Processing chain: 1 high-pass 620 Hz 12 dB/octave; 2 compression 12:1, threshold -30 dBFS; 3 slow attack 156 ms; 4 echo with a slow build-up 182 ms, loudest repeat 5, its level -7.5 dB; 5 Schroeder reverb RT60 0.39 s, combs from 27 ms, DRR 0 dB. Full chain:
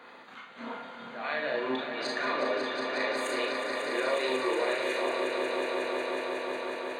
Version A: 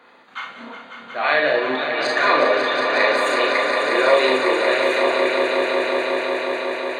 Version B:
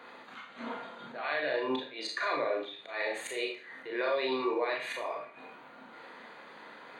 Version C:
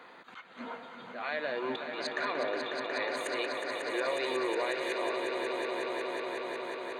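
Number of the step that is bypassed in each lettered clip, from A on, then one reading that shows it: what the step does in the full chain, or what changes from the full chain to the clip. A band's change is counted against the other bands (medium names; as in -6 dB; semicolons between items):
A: 2, mean gain reduction 8.5 dB; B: 4, echo-to-direct 6.5 dB to 0.0 dB; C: 5, echo-to-direct 6.5 dB to 2.0 dB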